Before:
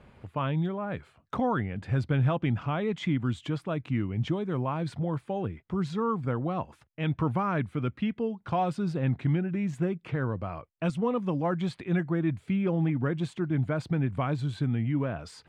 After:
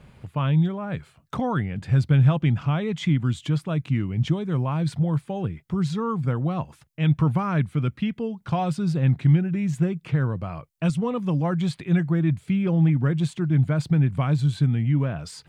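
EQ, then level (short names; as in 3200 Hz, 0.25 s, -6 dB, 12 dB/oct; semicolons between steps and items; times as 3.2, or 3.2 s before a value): low shelf 87 Hz +6.5 dB; bell 150 Hz +8.5 dB 0.62 oct; high shelf 3500 Hz +11.5 dB; 0.0 dB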